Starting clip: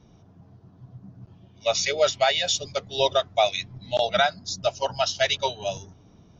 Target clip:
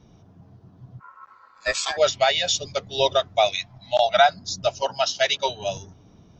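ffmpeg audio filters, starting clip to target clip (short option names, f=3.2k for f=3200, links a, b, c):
-filter_complex "[0:a]asplit=3[a][b][c];[a]afade=t=out:st=0.99:d=0.02[d];[b]aeval=exprs='val(0)*sin(2*PI*1200*n/s)':c=same,afade=t=in:st=0.99:d=0.02,afade=t=out:st=1.96:d=0.02[e];[c]afade=t=in:st=1.96:d=0.02[f];[d][e][f]amix=inputs=3:normalize=0,asettb=1/sr,asplit=3[g][h][i];[g]atrim=end=3.554[j];[h]atrim=start=3.55:end=4.29,asetpts=PTS-STARTPTS,afade=t=in:d=0.004:c=qsin,afade=t=out:st=0.736:d=0.004:c=qsin,lowshelf=f=550:t=q:w=3:g=-7[k];[i]atrim=start=4.286[l];[j][k]acrossfade=d=0.004:c1=hsin:c2=qsin[m];[m][l]acrossfade=d=0.004:c1=qsin:c2=hsin,asettb=1/sr,asplit=3[n][o][p];[n]atrim=end=4.824[q];[o]atrim=start=4.82:end=5.49,asetpts=PTS-STARTPTS,afade=t=in:d=0.004:c=qsin,afade=t=out:st=0.666:d=0.004:c=qsin,highpass=200[r];[p]atrim=start=5.486[s];[q][r]acrossfade=d=0.004:c1=hsin:c2=qsin[t];[t][s]acrossfade=d=0.004:c1=qsin:c2=hsin,volume=1.5dB"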